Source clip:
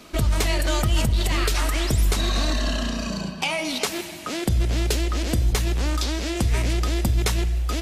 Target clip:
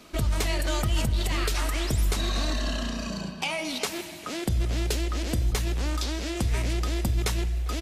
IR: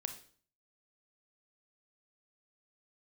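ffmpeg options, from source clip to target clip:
-filter_complex "[0:a]asplit=2[a][b];[b]adelay=400,highpass=300,lowpass=3.4k,asoftclip=type=hard:threshold=-20.5dB,volume=-18dB[c];[a][c]amix=inputs=2:normalize=0,volume=-4.5dB"

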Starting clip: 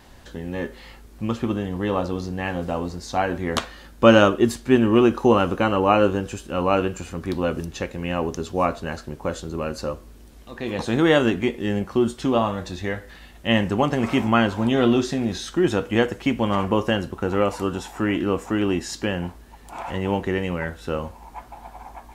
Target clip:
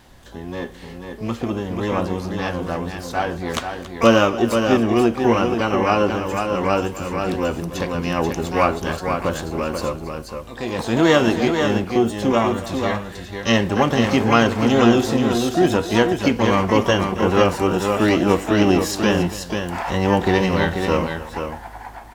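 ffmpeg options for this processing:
-filter_complex "[0:a]aecho=1:1:279|486:0.158|0.501,asplit=2[a][b];[b]asetrate=88200,aresample=44100,atempo=0.5,volume=-9dB[c];[a][c]amix=inputs=2:normalize=0,dynaudnorm=f=520:g=7:m=11.5dB,volume=-1dB"

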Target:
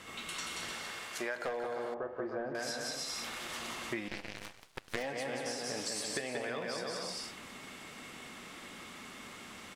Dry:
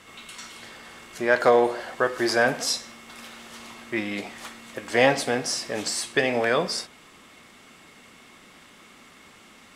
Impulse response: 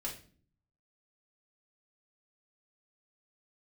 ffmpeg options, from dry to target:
-filter_complex "[0:a]asettb=1/sr,asplit=3[a][b][c];[a]atrim=end=0.734[d];[b]atrim=start=0.73:end=1.36,asetpts=PTS-STARTPTS,afade=t=in:d=0.004:c=qsin,afade=t=out:st=0.626:d=0.004:c=qsin,highpass=f=700:p=1[e];[c]atrim=start=1.356[f];[d][e]acrossfade=d=0.004:c1=hsin:c2=qsin[g];[g][f]acrossfade=d=0.004:c1=qsin:c2=hsin,aecho=1:1:180|306|394.2|455.9|499.2:0.631|0.398|0.251|0.158|0.1,aeval=exprs='clip(val(0),-1,0.266)':c=same,asettb=1/sr,asplit=3[h][i][j];[h]atrim=end=1.944[k];[i]atrim=start=1.94:end=2.55,asetpts=PTS-STARTPTS,afade=t=in:d=0.004:c=qsin,afade=t=out:st=0.606:d=0.004:c=qsin,lowpass=1k[l];[j]atrim=start=2.546[m];[k][l]acrossfade=d=0.004:c1=hsin:c2=qsin[n];[n][m]acrossfade=d=0.004:c1=qsin:c2=hsin,asettb=1/sr,asplit=3[o][p][q];[o]atrim=end=4.084[r];[p]atrim=start=4.08:end=5.03,asetpts=PTS-STARTPTS,afade=t=in:d=0.004:c=qsin,afade=t=out:st=0.946:d=0.004:c=qsin,aeval=exprs='0.376*(cos(1*acos(clip(val(0)/0.376,-1,1)))-cos(1*PI/2))+0.0531*(cos(4*acos(clip(val(0)/0.376,-1,1)))-cos(4*PI/2))+0.00668*(cos(5*acos(clip(val(0)/0.376,-1,1)))-cos(5*PI/2))+0.0596*(cos(6*acos(clip(val(0)/0.376,-1,1)))-cos(6*PI/2))+0.0596*(cos(7*acos(clip(val(0)/0.376,-1,1)))-cos(7*PI/2))':c=same[s];[q]atrim=start=5.026[t];[r][s]acrossfade=d=0.004:c1=hsin:c2=qsin[u];[u][t]acrossfade=d=0.004:c1=qsin:c2=hsin,acompressor=threshold=-34dB:ratio=16"

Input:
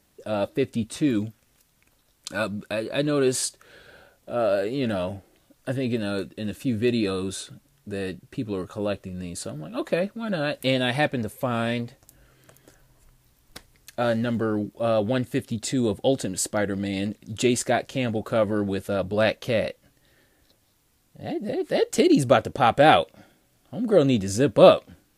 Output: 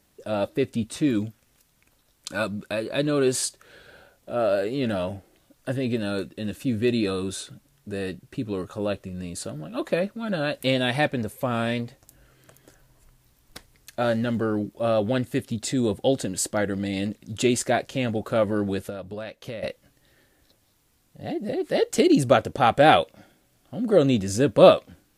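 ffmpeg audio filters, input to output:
-filter_complex "[0:a]asettb=1/sr,asplit=3[a][b][c];[a]atrim=end=18.894[d];[b]atrim=start=18.89:end=19.63,asetpts=PTS-STARTPTS,afade=t=in:d=0.004:c=qsin,afade=t=out:st=0.736:d=0.004:c=qsin,acompressor=threshold=-32dB:ratio=10[e];[c]atrim=start=19.626[f];[d][e]acrossfade=d=0.004:c1=hsin:c2=qsin[g];[g][f]acrossfade=d=0.004:c1=qsin:c2=hsin"

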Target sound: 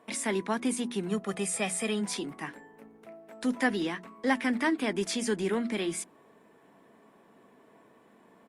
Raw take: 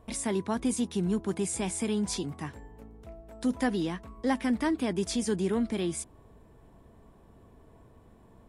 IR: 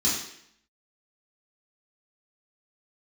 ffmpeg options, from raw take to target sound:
-filter_complex "[0:a]highpass=f=190:w=0.5412,highpass=f=190:w=1.3066,equalizer=f=2k:w=1.1:g=7.5,bandreject=f=60:t=h:w=6,bandreject=f=120:t=h:w=6,bandreject=f=180:t=h:w=6,bandreject=f=240:t=h:w=6,bandreject=f=300:t=h:w=6,bandreject=f=360:t=h:w=6,asplit=3[a][b][c];[a]afade=t=out:st=1.09:d=0.02[d];[b]aecho=1:1:1.6:0.83,afade=t=in:st=1.09:d=0.02,afade=t=out:st=2:d=0.02[e];[c]afade=t=in:st=2:d=0.02[f];[d][e][f]amix=inputs=3:normalize=0" -ar 48000 -c:a libopus -b:a 48k

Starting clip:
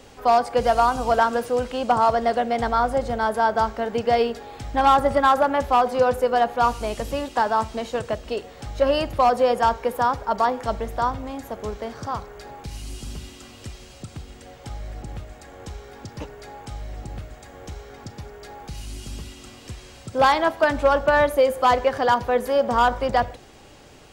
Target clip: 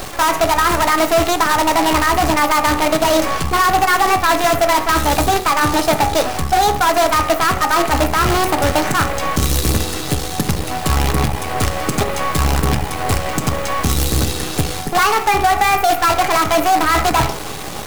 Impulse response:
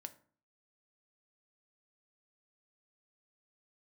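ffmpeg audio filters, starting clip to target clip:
-filter_complex "[0:a]areverse,acompressor=threshold=-27dB:ratio=16,areverse,acrusher=bits=6:dc=4:mix=0:aa=0.000001,asoftclip=type=tanh:threshold=-30dB[a];[1:a]atrim=start_sample=2205[b];[a][b]afir=irnorm=-1:irlink=0,asetrate=59535,aresample=44100,alimiter=level_in=35dB:limit=-1dB:release=50:level=0:latency=1,volume=-5.5dB"

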